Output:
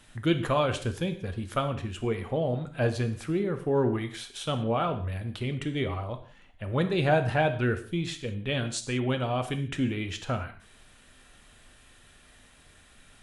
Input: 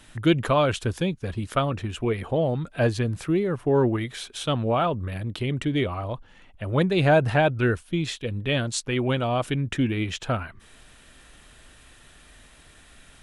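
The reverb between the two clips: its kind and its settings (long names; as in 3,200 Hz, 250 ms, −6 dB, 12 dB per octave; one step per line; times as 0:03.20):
reverb whose tail is shaped and stops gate 210 ms falling, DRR 7 dB
level −5 dB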